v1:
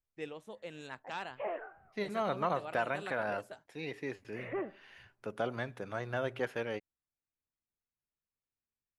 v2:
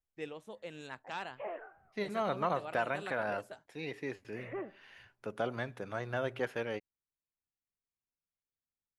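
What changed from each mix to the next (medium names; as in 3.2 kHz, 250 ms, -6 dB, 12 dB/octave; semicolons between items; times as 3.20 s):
background -3.5 dB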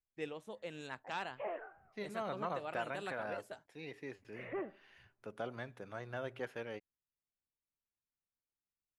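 second voice -7.0 dB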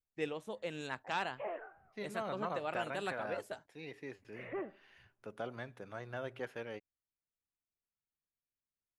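first voice +4.5 dB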